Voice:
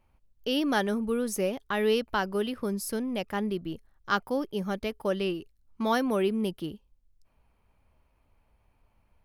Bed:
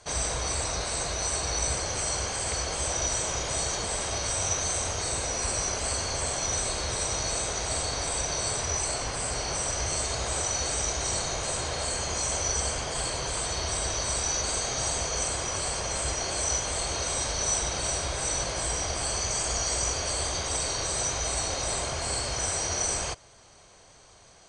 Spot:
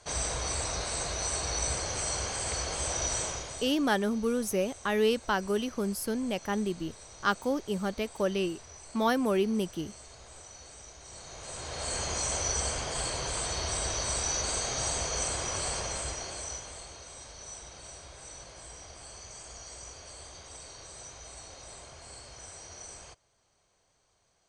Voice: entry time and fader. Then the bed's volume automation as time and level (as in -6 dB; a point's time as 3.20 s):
3.15 s, -0.5 dB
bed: 3.23 s -3 dB
3.88 s -20.5 dB
11.03 s -20.5 dB
11.96 s -2.5 dB
15.77 s -2.5 dB
17.03 s -17.5 dB